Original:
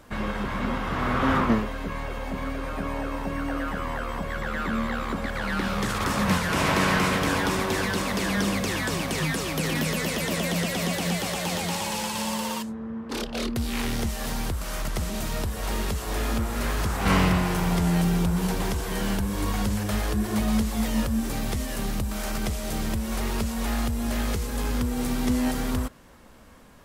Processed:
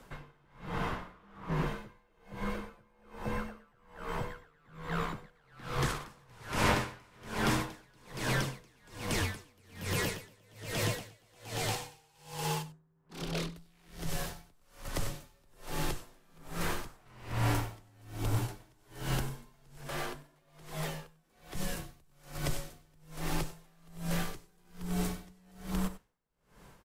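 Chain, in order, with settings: frequency shift -65 Hz; 19.81–21.55 tone controls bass -10 dB, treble -5 dB; on a send: echo 96 ms -8.5 dB; on the sum: dB-linear tremolo 1.2 Hz, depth 34 dB; gain -3.5 dB

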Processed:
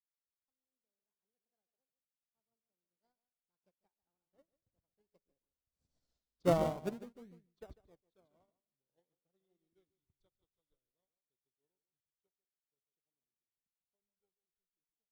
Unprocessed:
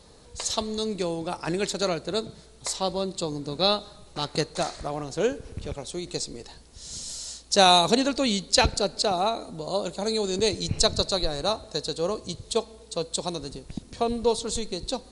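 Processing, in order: Doppler pass-by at 6.1, 56 m/s, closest 16 m; bell 8000 Hz -15 dB 2.6 oct; treble ducked by the level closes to 1100 Hz, closed at -35.5 dBFS; in parallel at -8 dB: decimation with a swept rate 36×, swing 100% 0.5 Hz; on the sum: feedback echo 0.146 s, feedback 24%, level -8 dB; upward expander 2.5:1, over -49 dBFS; gain -3 dB

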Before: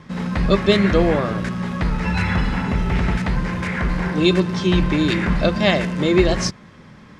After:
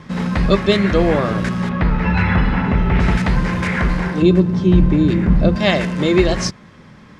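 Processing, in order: 1.69–3 LPF 2800 Hz 12 dB/oct; 4.22–5.56 tilt shelf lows +8.5 dB, about 650 Hz; vocal rider within 3 dB 0.5 s; gain +1.5 dB

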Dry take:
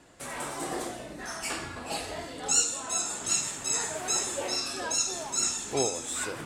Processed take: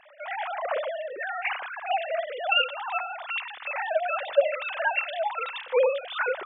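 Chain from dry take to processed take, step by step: sine-wave speech; 4.3–5.77 notches 60/120/180/240/300/360/420/480/540/600 Hz; gain +3.5 dB

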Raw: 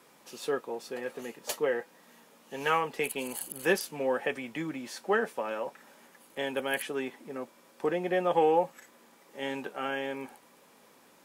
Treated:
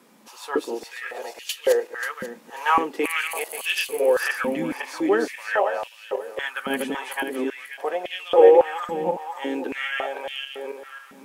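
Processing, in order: regenerating reverse delay 0.268 s, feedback 47%, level -1 dB; stepped high-pass 3.6 Hz 210–2900 Hz; gain +1.5 dB

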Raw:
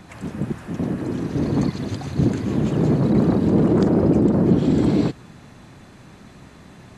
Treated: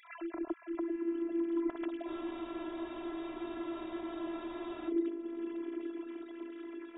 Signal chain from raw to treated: sine-wave speech; compressor 2:1, threshold -40 dBFS, peak gain reduction 16.5 dB; on a send: diffused feedback echo 0.911 s, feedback 55%, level -10 dB; on the sum: robotiser 337 Hz; spectral freeze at 2.1, 2.78 s

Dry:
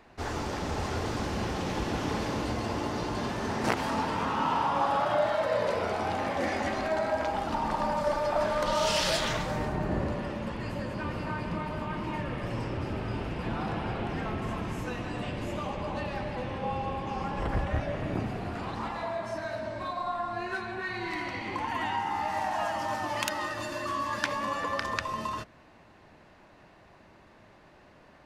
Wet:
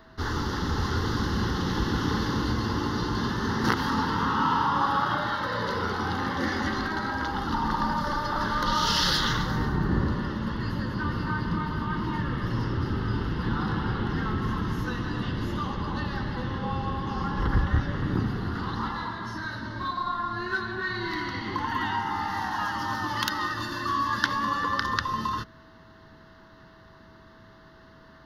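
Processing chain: fixed phaser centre 2400 Hz, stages 6; whine 650 Hz -64 dBFS; gain +7 dB

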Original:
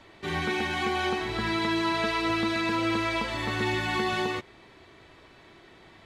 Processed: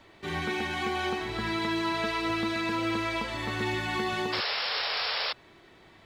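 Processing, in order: painted sound noise, 4.32–5.33, 410–5500 Hz -28 dBFS; companded quantiser 8-bit; gain -2.5 dB

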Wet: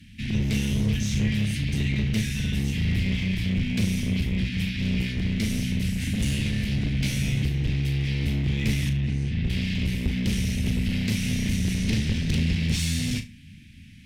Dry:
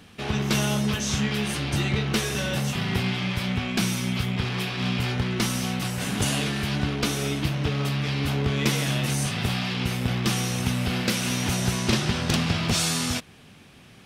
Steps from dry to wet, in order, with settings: octaver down 1 oct, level -1 dB; elliptic band-stop 250–2000 Hz, stop band 40 dB; high shelf 2700 Hz -9 dB; notches 60/120/180/240 Hz; in parallel at -2 dB: limiter -22.5 dBFS, peak gain reduction 10 dB; on the sum: one-sided clip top -23 dBFS; 6.93–7.43 doubler 16 ms -3 dB; 8.89–9.5 tape spacing loss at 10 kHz 23 dB; on a send: flutter echo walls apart 6.4 m, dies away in 0.24 s; on the sum: gain -1.5 dB

